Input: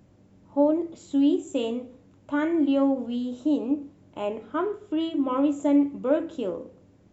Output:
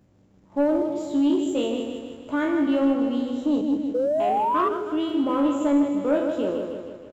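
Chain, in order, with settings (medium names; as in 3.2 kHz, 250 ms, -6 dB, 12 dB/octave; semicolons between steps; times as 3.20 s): spectral sustain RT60 0.45 s; 3.61–4.20 s: inverse Chebyshev band-stop 540–2900 Hz, stop band 40 dB; on a send: feedback delay 157 ms, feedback 57%, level -6.5 dB; 3.94–4.69 s: on the sum: painted sound rise 480–1200 Hz -23 dBFS; waveshaping leveller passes 1; trim -3 dB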